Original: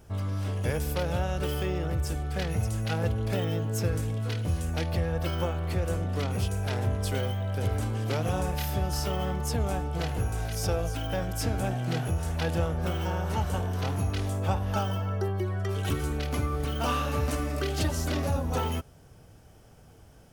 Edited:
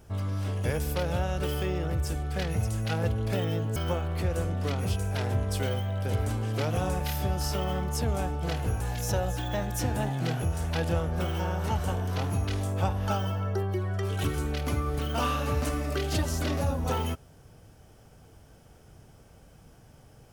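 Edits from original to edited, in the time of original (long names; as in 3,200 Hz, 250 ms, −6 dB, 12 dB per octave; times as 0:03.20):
0:03.76–0:05.28: remove
0:10.33–0:11.86: play speed 110%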